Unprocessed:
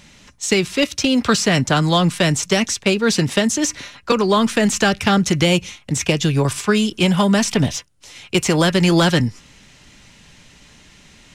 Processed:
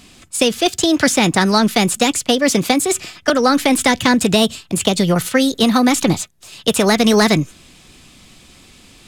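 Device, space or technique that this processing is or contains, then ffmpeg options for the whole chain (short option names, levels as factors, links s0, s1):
nightcore: -af "asetrate=55125,aresample=44100,volume=1.26"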